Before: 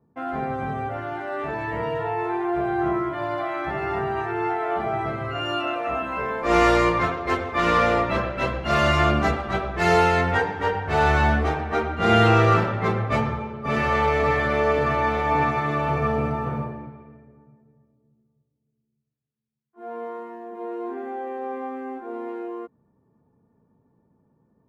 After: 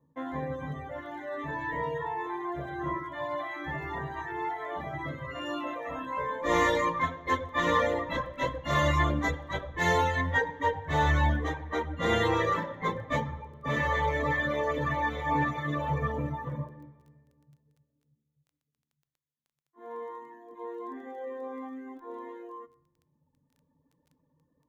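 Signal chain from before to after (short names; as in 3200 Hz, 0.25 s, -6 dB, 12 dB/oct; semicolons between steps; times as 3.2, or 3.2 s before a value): reverb removal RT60 1.5 s; ripple EQ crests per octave 1.1, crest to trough 14 dB; crackle 11/s -46 dBFS; on a send: reverb RT60 0.90 s, pre-delay 3 ms, DRR 17 dB; on the sum: gain -6 dB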